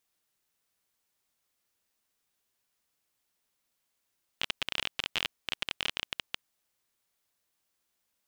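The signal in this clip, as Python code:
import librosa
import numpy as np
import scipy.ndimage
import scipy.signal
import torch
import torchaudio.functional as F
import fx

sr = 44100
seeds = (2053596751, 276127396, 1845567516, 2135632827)

y = fx.geiger_clicks(sr, seeds[0], length_s=2.14, per_s=22.0, level_db=-12.5)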